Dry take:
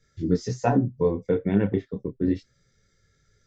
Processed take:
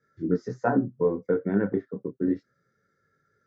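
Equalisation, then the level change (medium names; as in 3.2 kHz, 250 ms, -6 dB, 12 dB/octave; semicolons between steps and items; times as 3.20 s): band-pass 200–5500 Hz; peaking EQ 940 Hz -5.5 dB 1.2 oct; resonant high shelf 2 kHz -11.5 dB, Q 3; 0.0 dB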